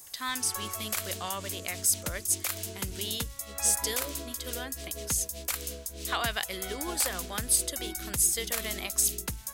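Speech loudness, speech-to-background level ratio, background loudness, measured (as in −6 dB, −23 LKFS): −30.0 LKFS, 5.0 dB, −35.0 LKFS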